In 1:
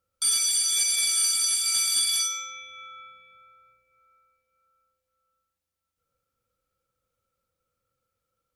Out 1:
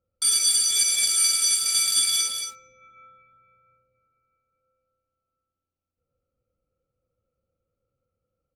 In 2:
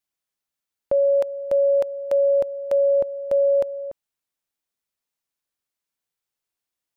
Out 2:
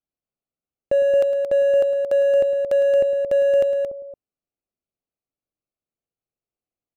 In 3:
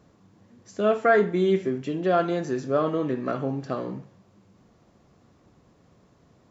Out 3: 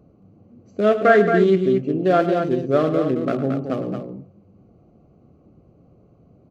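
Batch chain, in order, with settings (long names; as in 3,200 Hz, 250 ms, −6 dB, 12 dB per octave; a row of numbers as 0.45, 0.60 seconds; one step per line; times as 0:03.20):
adaptive Wiener filter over 25 samples
parametric band 950 Hz −14.5 dB 0.23 octaves
on a send: multi-tap delay 108/224 ms −12.5/−6.5 dB
on the sum: loudness normalisation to −19 LKFS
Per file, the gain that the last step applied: +3.5, +2.5, +6.0 decibels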